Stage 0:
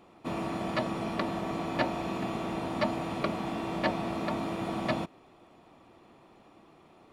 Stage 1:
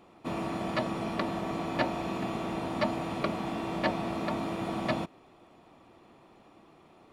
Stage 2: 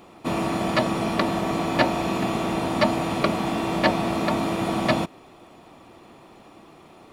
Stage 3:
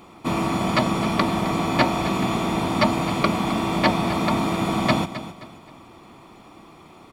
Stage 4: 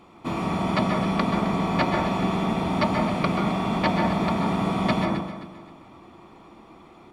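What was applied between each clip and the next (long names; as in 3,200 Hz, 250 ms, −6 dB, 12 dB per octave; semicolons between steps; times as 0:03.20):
no processing that can be heard
high-shelf EQ 5,300 Hz +6.5 dB; level +8.5 dB
comb filter 0.9 ms, depth 31%; repeating echo 263 ms, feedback 34%, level −13 dB; level +1.5 dB
high-shelf EQ 6,800 Hz −10 dB; on a send at −2 dB: convolution reverb RT60 0.70 s, pre-delay 123 ms; on the sum: level −4.5 dB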